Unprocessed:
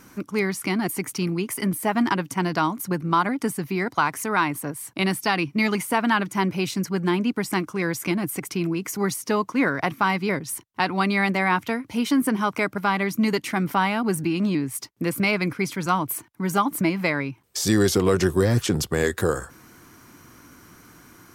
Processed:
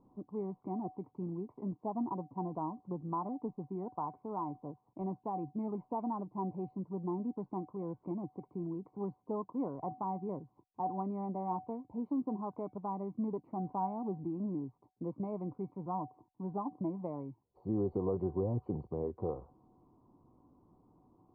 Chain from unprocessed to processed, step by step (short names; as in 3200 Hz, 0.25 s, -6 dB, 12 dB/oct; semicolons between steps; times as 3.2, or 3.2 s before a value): elliptic low-pass 1000 Hz, stop band 40 dB; resonator 750 Hz, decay 0.32 s, mix 80%; AC-3 32 kbps 32000 Hz